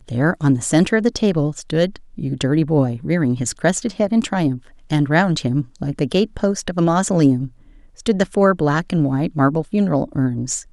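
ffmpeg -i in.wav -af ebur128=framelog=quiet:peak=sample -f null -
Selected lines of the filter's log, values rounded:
Integrated loudness:
  I:         -18.7 LUFS
  Threshold: -28.9 LUFS
Loudness range:
  LRA:         1.3 LU
  Threshold: -39.1 LUFS
  LRA low:   -19.7 LUFS
  LRA high:  -18.4 LUFS
Sample peak:
  Peak:       -1.7 dBFS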